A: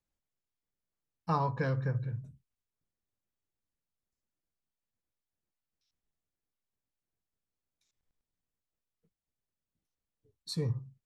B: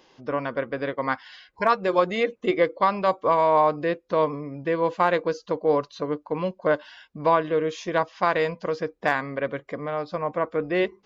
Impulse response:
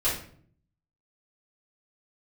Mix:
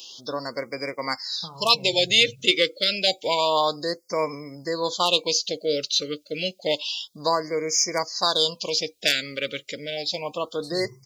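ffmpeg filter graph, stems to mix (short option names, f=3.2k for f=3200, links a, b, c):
-filter_complex "[0:a]acompressor=threshold=-40dB:ratio=6,adelay=150,volume=0dB[a];[1:a]aexciter=amount=11.8:drive=9.1:freq=2.7k,bass=f=250:g=-3,treble=f=4k:g=-3,volume=-3dB[b];[a][b]amix=inputs=2:normalize=0,highpass=69,afftfilt=real='re*(1-between(b*sr/1024,840*pow(3400/840,0.5+0.5*sin(2*PI*0.29*pts/sr))/1.41,840*pow(3400/840,0.5+0.5*sin(2*PI*0.29*pts/sr))*1.41))':imag='im*(1-between(b*sr/1024,840*pow(3400/840,0.5+0.5*sin(2*PI*0.29*pts/sr))/1.41,840*pow(3400/840,0.5+0.5*sin(2*PI*0.29*pts/sr))*1.41))':win_size=1024:overlap=0.75"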